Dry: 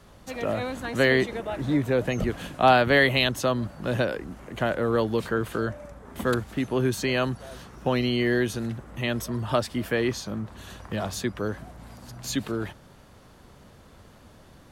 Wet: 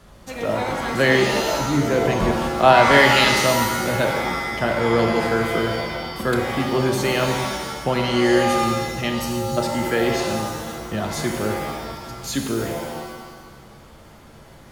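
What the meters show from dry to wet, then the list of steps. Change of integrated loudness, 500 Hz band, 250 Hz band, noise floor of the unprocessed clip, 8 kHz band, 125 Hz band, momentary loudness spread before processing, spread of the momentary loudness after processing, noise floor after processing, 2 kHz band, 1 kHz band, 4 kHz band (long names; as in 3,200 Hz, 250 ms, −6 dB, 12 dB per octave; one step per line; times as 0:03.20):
+6.0 dB, +6.0 dB, +4.5 dB, −52 dBFS, +9.5 dB, +4.0 dB, 17 LU, 13 LU, −45 dBFS, +6.5 dB, +8.5 dB, +7.0 dB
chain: time-frequency box erased 0:09.10–0:09.57, 250–3,800 Hz
reverb with rising layers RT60 1.3 s, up +7 semitones, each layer −2 dB, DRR 3 dB
level +2.5 dB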